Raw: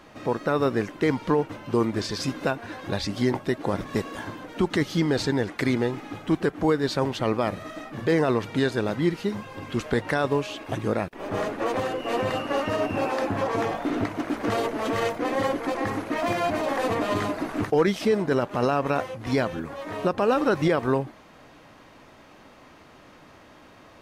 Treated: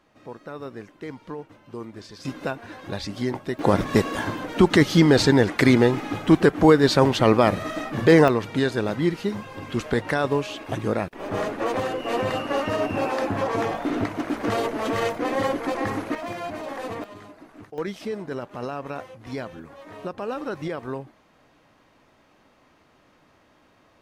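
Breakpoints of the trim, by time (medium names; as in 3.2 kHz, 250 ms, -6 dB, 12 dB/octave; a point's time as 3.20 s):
-13 dB
from 2.25 s -3 dB
from 3.59 s +7.5 dB
from 8.28 s +1 dB
from 16.15 s -7 dB
from 17.04 s -17.5 dB
from 17.78 s -8.5 dB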